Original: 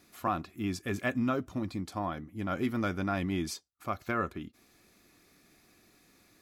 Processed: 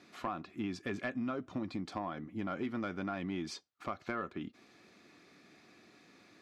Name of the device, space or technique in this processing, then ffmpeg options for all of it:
AM radio: -af "highpass=150,lowpass=4.4k,acompressor=threshold=-38dB:ratio=5,asoftclip=type=tanh:threshold=-28dB,volume=4dB"

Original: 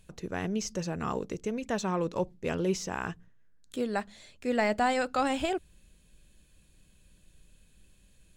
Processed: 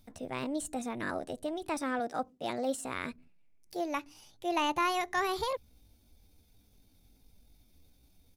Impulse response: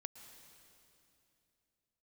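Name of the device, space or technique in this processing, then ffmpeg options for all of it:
chipmunk voice: -filter_complex "[0:a]asettb=1/sr,asplit=3[a][b][c];[a]atrim=end=2.004[d];[b]atrim=start=2:end=2.87,asetpts=PTS-STARTPTS,afade=t=in:d=0.004:c=qsin,afade=t=out:st=0.866:d=0.004:c=qsin,highpass=f=130:p=1[e];[c]atrim=start=2.866[f];[d][e]acrossfade=d=0.004:c1=hsin:c2=qsin[g];[g][f]acrossfade=d=0.004:c1=qsin:c2=hsin,asetrate=62367,aresample=44100,atempo=0.707107,volume=-3dB"

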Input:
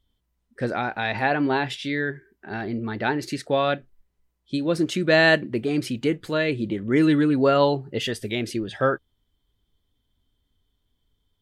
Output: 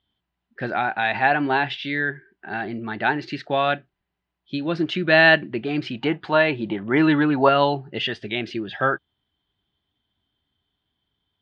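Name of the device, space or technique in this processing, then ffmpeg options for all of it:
guitar cabinet: -filter_complex "[0:a]highpass=110,equalizer=f=110:t=q:w=4:g=-4,equalizer=f=250:t=q:w=4:g=-5,equalizer=f=490:t=q:w=4:g=-9,equalizer=f=760:t=q:w=4:g=5,equalizer=f=1.6k:t=q:w=4:g=4,equalizer=f=2.8k:t=q:w=4:g=4,lowpass=f=4.2k:w=0.5412,lowpass=f=4.2k:w=1.3066,asettb=1/sr,asplit=3[a][b][c];[a]atrim=end=5.924[d];[b]atrim=start=5.92:end=7.49,asetpts=PTS-STARTPTS,afade=t=in:d=0.004:c=qsin,afade=t=out:st=1.566:d=0.004:c=qsin,equalizer=f=870:t=o:w=0.92:g=13[e];[c]atrim=start=7.486[f];[d][e]acrossfade=d=0.004:c1=hsin:c2=qsin[g];[g][f]acrossfade=d=0.004:c1=qsin:c2=hsin,volume=1.5dB"

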